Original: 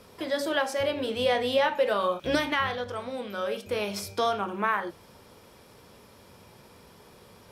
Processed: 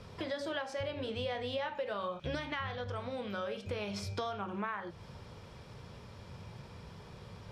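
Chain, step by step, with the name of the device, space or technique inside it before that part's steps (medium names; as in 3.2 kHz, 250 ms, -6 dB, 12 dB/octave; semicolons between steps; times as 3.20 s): jukebox (low-pass 5.7 kHz 12 dB/octave; resonant low shelf 190 Hz +8 dB, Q 1.5; compression 4:1, threshold -36 dBFS, peak gain reduction 13.5 dB)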